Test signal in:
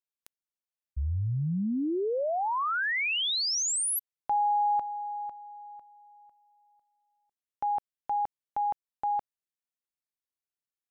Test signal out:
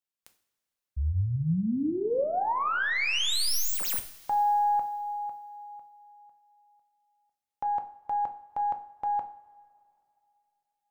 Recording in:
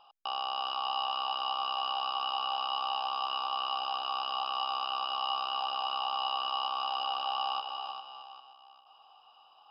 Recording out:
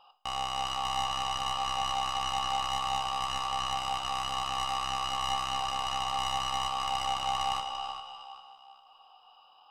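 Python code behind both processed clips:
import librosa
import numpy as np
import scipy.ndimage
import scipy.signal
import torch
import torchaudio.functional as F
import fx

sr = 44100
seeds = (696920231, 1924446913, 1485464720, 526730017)

y = fx.tracing_dist(x, sr, depth_ms=0.066)
y = fx.rev_double_slope(y, sr, seeds[0], early_s=0.47, late_s=2.7, knee_db=-18, drr_db=5.5)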